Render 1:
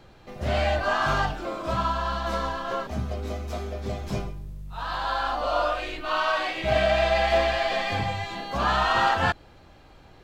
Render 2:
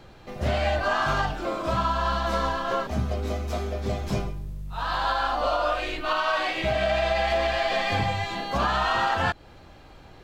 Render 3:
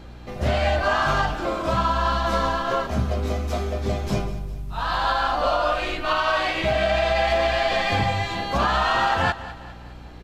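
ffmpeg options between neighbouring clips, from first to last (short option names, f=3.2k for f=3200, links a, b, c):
-af "alimiter=limit=-18dB:level=0:latency=1:release=206,volume=3dB"
-af "aresample=32000,aresample=44100,aecho=1:1:202|404|606|808:0.168|0.0789|0.0371|0.0174,aeval=exprs='val(0)+0.00631*(sin(2*PI*60*n/s)+sin(2*PI*2*60*n/s)/2+sin(2*PI*3*60*n/s)/3+sin(2*PI*4*60*n/s)/4+sin(2*PI*5*60*n/s)/5)':c=same,volume=3dB"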